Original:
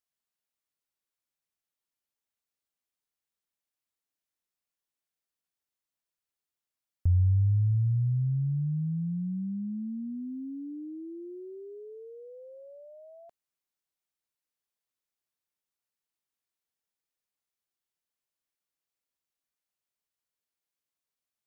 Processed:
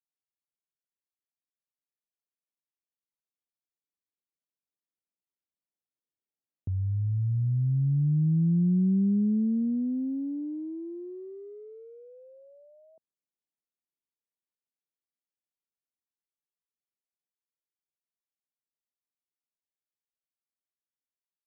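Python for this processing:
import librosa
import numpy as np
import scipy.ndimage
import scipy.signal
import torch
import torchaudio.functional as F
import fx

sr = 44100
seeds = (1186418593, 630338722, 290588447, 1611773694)

y = fx.wiener(x, sr, points=25)
y = fx.doppler_pass(y, sr, speed_mps=19, closest_m=20.0, pass_at_s=9.08)
y = scipy.signal.sosfilt(scipy.signal.butter(2, 190.0, 'highpass', fs=sr, output='sos'), y)
y = fx.tilt_shelf(y, sr, db=7.5, hz=640.0)
y = fx.doppler_dist(y, sr, depth_ms=0.14)
y = F.gain(torch.from_numpy(y), 6.5).numpy()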